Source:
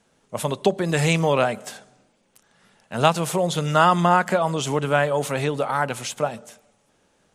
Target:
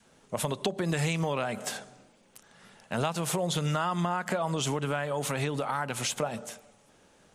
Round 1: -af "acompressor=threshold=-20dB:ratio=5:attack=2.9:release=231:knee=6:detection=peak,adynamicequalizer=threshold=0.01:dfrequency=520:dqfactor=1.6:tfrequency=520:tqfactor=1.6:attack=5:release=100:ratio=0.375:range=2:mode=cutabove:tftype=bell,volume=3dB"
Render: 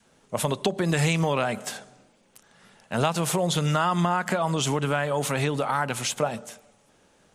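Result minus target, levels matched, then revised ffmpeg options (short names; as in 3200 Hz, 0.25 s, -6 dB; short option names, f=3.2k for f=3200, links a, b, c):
compressor: peak gain reduction -6 dB
-af "acompressor=threshold=-27.5dB:ratio=5:attack=2.9:release=231:knee=6:detection=peak,adynamicequalizer=threshold=0.01:dfrequency=520:dqfactor=1.6:tfrequency=520:tqfactor=1.6:attack=5:release=100:ratio=0.375:range=2:mode=cutabove:tftype=bell,volume=3dB"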